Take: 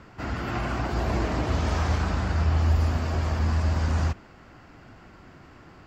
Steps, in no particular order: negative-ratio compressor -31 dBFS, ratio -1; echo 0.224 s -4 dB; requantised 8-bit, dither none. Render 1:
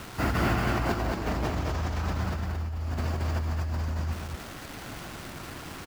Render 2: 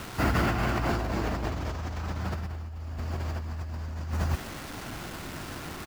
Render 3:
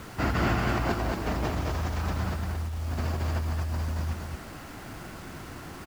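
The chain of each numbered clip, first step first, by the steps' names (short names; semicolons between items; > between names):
requantised > negative-ratio compressor > echo; echo > requantised > negative-ratio compressor; negative-ratio compressor > echo > requantised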